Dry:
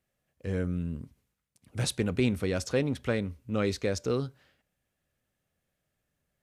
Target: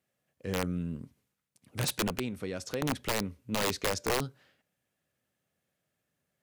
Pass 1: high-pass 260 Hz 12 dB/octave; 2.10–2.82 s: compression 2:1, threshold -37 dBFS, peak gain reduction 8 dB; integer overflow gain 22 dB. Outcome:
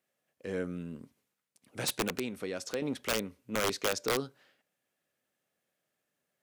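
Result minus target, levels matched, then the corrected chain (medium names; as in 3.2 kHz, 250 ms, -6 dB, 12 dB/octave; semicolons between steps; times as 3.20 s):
125 Hz band -6.5 dB
high-pass 120 Hz 12 dB/octave; 2.10–2.82 s: compression 2:1, threshold -37 dBFS, peak gain reduction 9 dB; integer overflow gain 22 dB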